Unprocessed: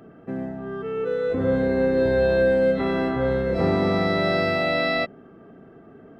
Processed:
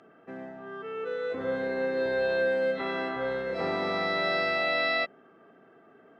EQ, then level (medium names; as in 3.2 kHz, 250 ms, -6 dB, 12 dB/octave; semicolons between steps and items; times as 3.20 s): high-pass 1.1 kHz 6 dB/octave; distance through air 65 m; 0.0 dB